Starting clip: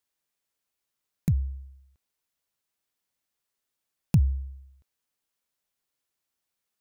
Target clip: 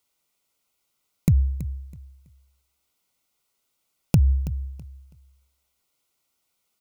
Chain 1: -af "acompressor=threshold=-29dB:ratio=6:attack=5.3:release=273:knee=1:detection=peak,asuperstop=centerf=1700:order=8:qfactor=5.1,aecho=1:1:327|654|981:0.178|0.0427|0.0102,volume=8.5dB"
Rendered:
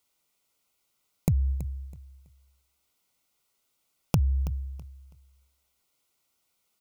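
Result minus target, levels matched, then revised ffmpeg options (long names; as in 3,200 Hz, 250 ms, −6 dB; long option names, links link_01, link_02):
downward compressor: peak gain reduction +6.5 dB
-af "acompressor=threshold=-21.5dB:ratio=6:attack=5.3:release=273:knee=1:detection=peak,asuperstop=centerf=1700:order=8:qfactor=5.1,aecho=1:1:327|654|981:0.178|0.0427|0.0102,volume=8.5dB"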